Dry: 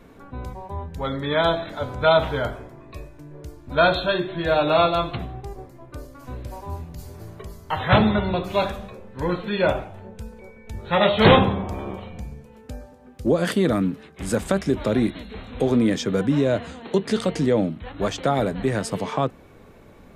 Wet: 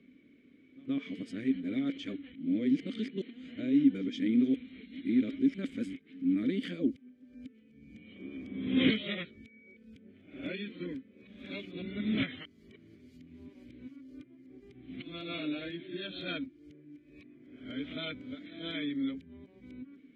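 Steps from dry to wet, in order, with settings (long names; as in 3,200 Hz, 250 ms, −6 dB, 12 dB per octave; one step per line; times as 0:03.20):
played backwards from end to start
formant filter i
echo ahead of the sound 123 ms −23 dB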